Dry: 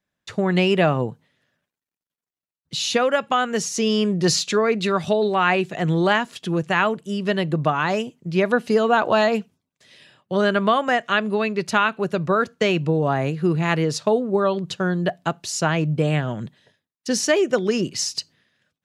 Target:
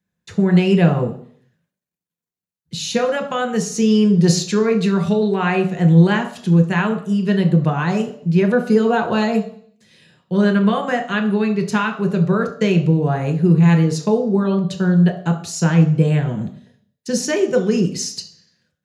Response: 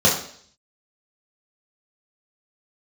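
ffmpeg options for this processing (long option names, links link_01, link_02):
-filter_complex "[0:a]highshelf=frequency=8300:gain=4.5,asplit=2[link_01][link_02];[1:a]atrim=start_sample=2205,lowshelf=frequency=270:gain=10[link_03];[link_02][link_03]afir=irnorm=-1:irlink=0,volume=-23.5dB[link_04];[link_01][link_04]amix=inputs=2:normalize=0,volume=-3dB"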